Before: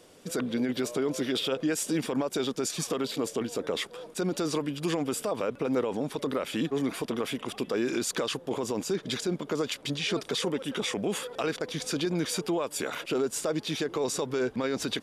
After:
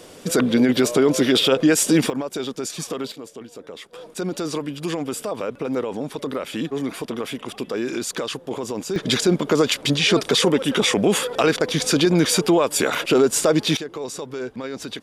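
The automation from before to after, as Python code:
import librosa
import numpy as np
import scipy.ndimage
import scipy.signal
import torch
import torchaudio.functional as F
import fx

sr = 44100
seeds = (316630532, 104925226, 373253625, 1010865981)

y = fx.gain(x, sr, db=fx.steps((0.0, 12.0), (2.1, 2.0), (3.12, -7.0), (3.93, 3.0), (8.96, 12.0), (13.77, -1.0)))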